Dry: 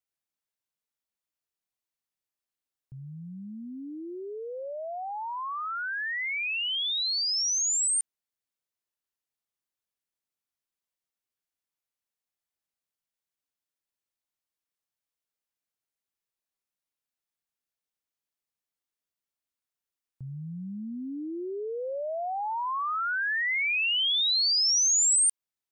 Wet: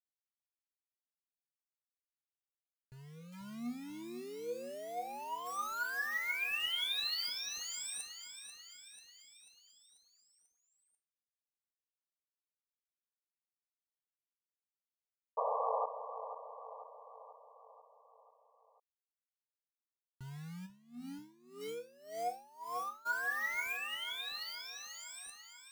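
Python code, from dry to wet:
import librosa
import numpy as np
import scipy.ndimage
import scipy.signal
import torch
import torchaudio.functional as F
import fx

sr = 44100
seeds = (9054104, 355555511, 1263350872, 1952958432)

y = fx.peak_eq(x, sr, hz=6300.0, db=3.5, octaves=0.46)
y = fx.over_compress(y, sr, threshold_db=-29.0, ratio=-0.5)
y = fx.quant_companded(y, sr, bits=4)
y = fx.comb_fb(y, sr, f0_hz=240.0, decay_s=0.29, harmonics='all', damping=0.0, mix_pct=80)
y = fx.spec_paint(y, sr, seeds[0], shape='noise', start_s=15.37, length_s=0.49, low_hz=440.0, high_hz=1200.0, level_db=-34.0)
y = fx.echo_feedback(y, sr, ms=490, feedback_pct=56, wet_db=-10)
y = fx.tremolo_db(y, sr, hz=1.8, depth_db=23, at=(20.65, 23.05), fade=0.02)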